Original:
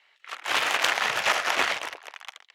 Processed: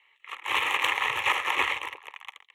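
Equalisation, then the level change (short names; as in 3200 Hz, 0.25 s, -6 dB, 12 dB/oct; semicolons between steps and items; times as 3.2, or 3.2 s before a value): bell 430 Hz -8.5 dB 2.2 oct; high shelf 2500 Hz -10.5 dB; fixed phaser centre 1000 Hz, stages 8; +7.0 dB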